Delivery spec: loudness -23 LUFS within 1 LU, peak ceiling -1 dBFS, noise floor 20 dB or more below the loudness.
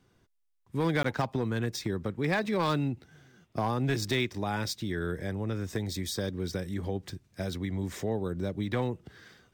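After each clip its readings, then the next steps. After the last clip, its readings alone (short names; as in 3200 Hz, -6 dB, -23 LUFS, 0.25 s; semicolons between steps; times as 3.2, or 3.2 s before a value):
clipped 0.5%; flat tops at -21.0 dBFS; dropouts 1; longest dropout 14 ms; loudness -32.0 LUFS; peak -21.0 dBFS; loudness target -23.0 LUFS
-> clip repair -21 dBFS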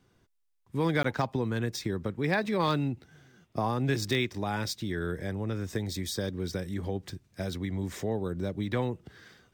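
clipped 0.0%; dropouts 1; longest dropout 14 ms
-> interpolate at 1.03, 14 ms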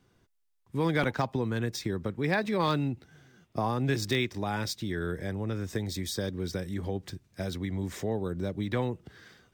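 dropouts 0; loudness -31.5 LUFS; peak -13.5 dBFS; loudness target -23.0 LUFS
-> gain +8.5 dB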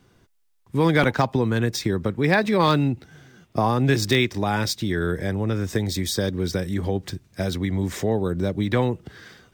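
loudness -23.0 LUFS; peak -5.0 dBFS; noise floor -62 dBFS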